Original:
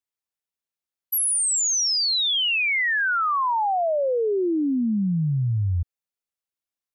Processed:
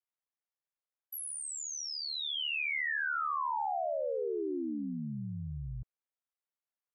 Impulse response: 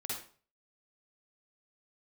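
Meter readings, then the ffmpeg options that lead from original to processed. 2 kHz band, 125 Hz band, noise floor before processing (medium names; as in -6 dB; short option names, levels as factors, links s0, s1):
-11.0 dB, -17.5 dB, under -85 dBFS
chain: -filter_complex "[0:a]aeval=exprs='val(0)*sin(2*PI*37*n/s)':c=same,acrossover=split=400 2300:gain=0.2 1 0.178[s0][s1][s2];[s0][s1][s2]amix=inputs=3:normalize=0,acompressor=threshold=0.0282:ratio=6"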